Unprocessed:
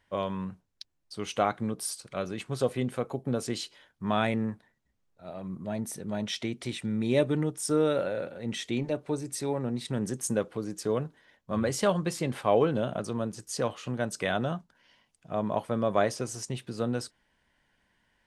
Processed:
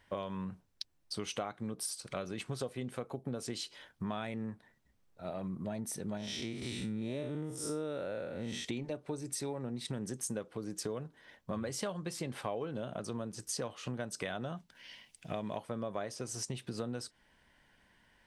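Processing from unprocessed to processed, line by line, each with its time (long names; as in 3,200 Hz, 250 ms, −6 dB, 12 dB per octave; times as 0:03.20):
0:06.17–0:08.65: spectrum smeared in time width 141 ms
0:14.57–0:15.58: high shelf with overshoot 1,700 Hz +6.5 dB, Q 1.5
whole clip: notch filter 6,800 Hz, Q 21; dynamic equaliser 6,200 Hz, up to +3 dB, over −50 dBFS, Q 0.72; downward compressor 6 to 1, threshold −40 dBFS; level +4 dB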